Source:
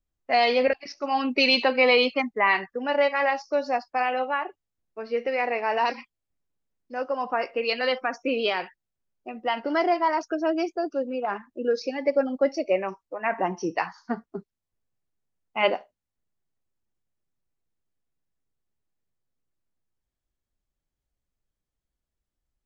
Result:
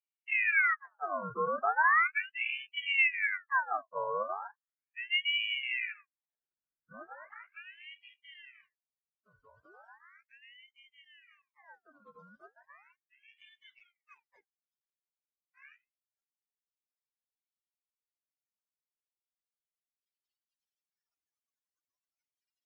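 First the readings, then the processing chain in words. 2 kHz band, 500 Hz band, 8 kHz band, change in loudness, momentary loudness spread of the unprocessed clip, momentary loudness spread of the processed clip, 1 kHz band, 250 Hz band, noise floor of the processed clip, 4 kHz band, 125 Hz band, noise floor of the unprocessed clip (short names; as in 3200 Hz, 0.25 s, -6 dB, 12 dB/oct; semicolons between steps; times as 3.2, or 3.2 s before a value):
-3.5 dB, -19.5 dB, n/a, -5.0 dB, 13 LU, 23 LU, -10.0 dB, -27.5 dB, under -85 dBFS, -8.5 dB, under -10 dB, under -85 dBFS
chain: spectrum mirrored in octaves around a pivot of 400 Hz; band-pass sweep 320 Hz -> 3900 Hz, 5.56–9.2; ring modulator with a swept carrier 1700 Hz, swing 55%, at 0.37 Hz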